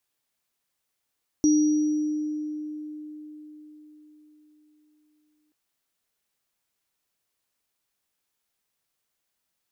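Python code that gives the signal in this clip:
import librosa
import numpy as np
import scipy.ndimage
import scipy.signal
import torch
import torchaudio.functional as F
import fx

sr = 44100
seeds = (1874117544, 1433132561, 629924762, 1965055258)

y = fx.additive_free(sr, length_s=4.08, hz=303.0, level_db=-15.5, upper_db=(-11,), decay_s=4.62, upper_decays_s=(1.52,), upper_hz=(5760.0,))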